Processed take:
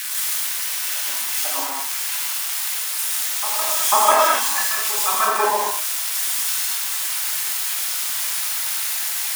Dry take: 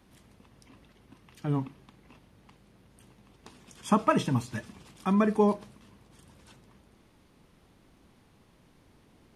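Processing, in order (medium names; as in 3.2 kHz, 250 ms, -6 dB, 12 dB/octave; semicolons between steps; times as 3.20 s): zero-crossing glitches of -23 dBFS; tilt shelf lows -3 dB, about 1.1 kHz; LFO high-pass saw down 6.8 Hz 620–1900 Hz; resonant low shelf 180 Hz -11.5 dB, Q 1.5; reverse echo 494 ms -13.5 dB; gated-style reverb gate 280 ms flat, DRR -6 dB; trim +1.5 dB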